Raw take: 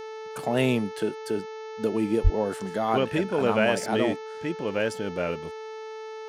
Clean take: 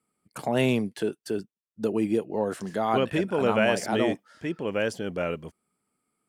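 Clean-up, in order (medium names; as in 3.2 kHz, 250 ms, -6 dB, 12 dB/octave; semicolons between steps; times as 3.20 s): de-hum 438.5 Hz, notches 15; 2.23–2.35 s: high-pass 140 Hz 24 dB/octave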